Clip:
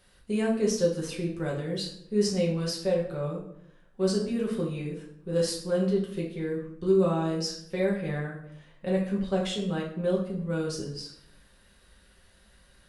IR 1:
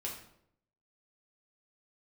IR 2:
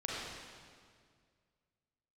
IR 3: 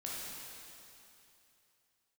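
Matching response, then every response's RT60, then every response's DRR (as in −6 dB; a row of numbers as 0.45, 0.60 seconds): 1; 0.70, 2.0, 2.9 seconds; −4.0, −5.5, −6.0 decibels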